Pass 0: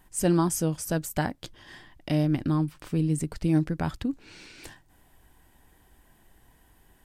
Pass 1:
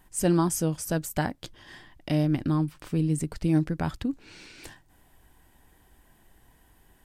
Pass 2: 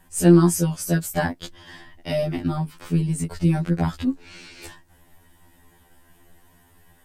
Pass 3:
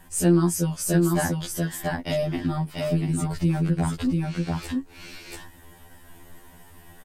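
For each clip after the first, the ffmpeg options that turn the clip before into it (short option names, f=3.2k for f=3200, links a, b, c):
-af anull
-af "aeval=exprs='0.282*(cos(1*acos(clip(val(0)/0.282,-1,1)))-cos(1*PI/2))+0.00562*(cos(4*acos(clip(val(0)/0.282,-1,1)))-cos(4*PI/2))':c=same,afftfilt=real='re*2*eq(mod(b,4),0)':imag='im*2*eq(mod(b,4),0)':win_size=2048:overlap=0.75,volume=7dB"
-filter_complex "[0:a]asplit=2[a][b];[b]aecho=0:1:688:0.631[c];[a][c]amix=inputs=2:normalize=0,acompressor=threshold=-39dB:ratio=1.5,volume=5dB"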